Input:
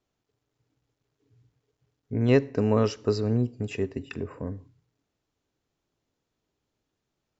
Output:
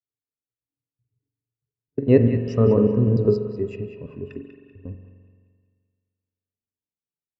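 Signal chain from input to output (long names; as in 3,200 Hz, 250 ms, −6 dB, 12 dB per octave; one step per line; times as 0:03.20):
slices reordered back to front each 99 ms, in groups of 5
feedback echo with a band-pass in the loop 193 ms, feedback 60%, band-pass 2,600 Hz, level −6 dB
spring reverb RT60 2.6 s, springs 43 ms, chirp 45 ms, DRR 4 dB
every bin expanded away from the loudest bin 1.5 to 1
level +5 dB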